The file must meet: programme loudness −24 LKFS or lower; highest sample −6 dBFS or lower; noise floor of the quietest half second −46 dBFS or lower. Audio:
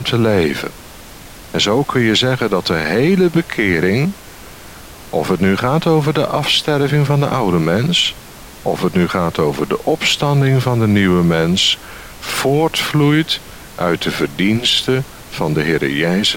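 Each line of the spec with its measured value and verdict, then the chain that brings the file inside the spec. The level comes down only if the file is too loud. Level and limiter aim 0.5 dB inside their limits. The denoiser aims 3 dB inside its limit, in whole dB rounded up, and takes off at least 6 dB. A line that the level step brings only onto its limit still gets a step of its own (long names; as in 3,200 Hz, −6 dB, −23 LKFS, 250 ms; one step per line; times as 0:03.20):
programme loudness −15.5 LKFS: out of spec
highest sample −3.5 dBFS: out of spec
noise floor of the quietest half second −36 dBFS: out of spec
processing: broadband denoise 6 dB, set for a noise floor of −36 dBFS
level −9 dB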